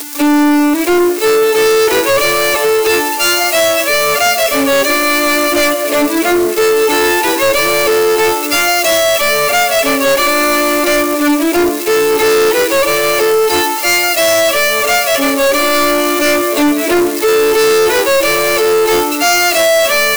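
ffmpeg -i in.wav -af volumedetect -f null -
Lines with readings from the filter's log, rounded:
mean_volume: -11.5 dB
max_volume: -6.2 dB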